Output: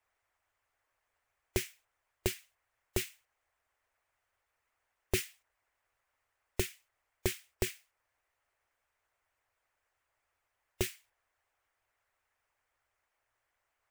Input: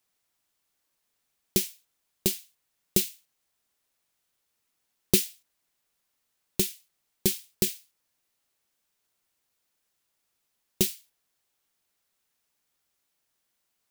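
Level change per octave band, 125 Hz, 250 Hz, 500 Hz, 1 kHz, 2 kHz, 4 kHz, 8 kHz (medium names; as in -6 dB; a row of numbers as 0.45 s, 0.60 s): -4.5 dB, -10.5 dB, -5.0 dB, +1.5 dB, 0.0 dB, -9.5 dB, -11.0 dB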